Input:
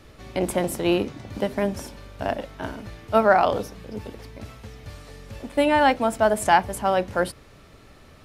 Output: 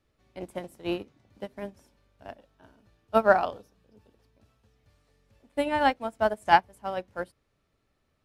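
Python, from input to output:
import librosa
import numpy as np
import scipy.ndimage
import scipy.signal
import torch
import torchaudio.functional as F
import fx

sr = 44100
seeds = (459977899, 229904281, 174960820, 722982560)

y = fx.notch(x, sr, hz=2100.0, q=7.2, at=(2.38, 4.76))
y = fx.upward_expand(y, sr, threshold_db=-29.0, expansion=2.5)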